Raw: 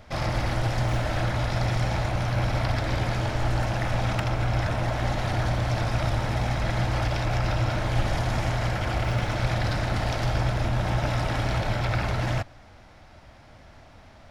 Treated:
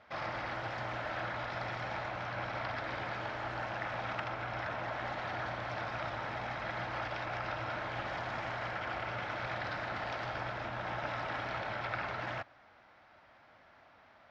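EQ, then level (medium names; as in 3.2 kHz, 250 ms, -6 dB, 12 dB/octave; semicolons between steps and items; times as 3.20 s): high-pass 600 Hz 6 dB/octave; distance through air 200 m; peaking EQ 1.4 kHz +4.5 dB 1.2 oct; -6.5 dB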